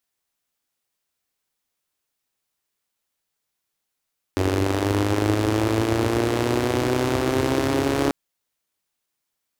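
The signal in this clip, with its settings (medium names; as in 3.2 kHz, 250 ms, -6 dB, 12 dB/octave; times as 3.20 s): four-cylinder engine model, changing speed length 3.74 s, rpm 2800, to 4200, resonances 96/310 Hz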